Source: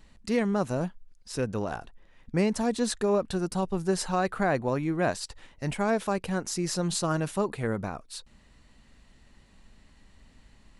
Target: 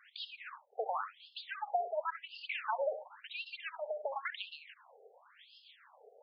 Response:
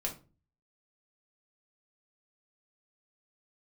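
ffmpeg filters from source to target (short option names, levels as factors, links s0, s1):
-filter_complex "[0:a]highshelf=f=4300:g=-8.5,acompressor=threshold=0.0112:ratio=6,acrossover=split=560[s0][s1];[s0]aeval=exprs='val(0)*(1-0.5/2+0.5/2*cos(2*PI*4*n/s))':c=same[s2];[s1]aeval=exprs='val(0)*(1-0.5/2-0.5/2*cos(2*PI*4*n/s))':c=same[s3];[s2][s3]amix=inputs=2:normalize=0,asplit=2[s4][s5];[1:a]atrim=start_sample=2205,adelay=112[s6];[s5][s6]afir=irnorm=-1:irlink=0,volume=0.211[s7];[s4][s7]amix=inputs=2:normalize=0,asetrate=76440,aresample=44100,afftfilt=real='re*between(b*sr/1024,550*pow(3800/550,0.5+0.5*sin(2*PI*0.94*pts/sr))/1.41,550*pow(3800/550,0.5+0.5*sin(2*PI*0.94*pts/sr))*1.41)':imag='im*between(b*sr/1024,550*pow(3800/550,0.5+0.5*sin(2*PI*0.94*pts/sr))/1.41,550*pow(3800/550,0.5+0.5*sin(2*PI*0.94*pts/sr))*1.41)':win_size=1024:overlap=0.75,volume=4.47"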